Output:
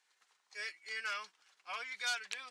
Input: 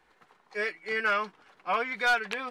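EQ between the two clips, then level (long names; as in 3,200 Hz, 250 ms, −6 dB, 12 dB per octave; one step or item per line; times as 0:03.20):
resonant band-pass 6,900 Hz, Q 1.4
+4.0 dB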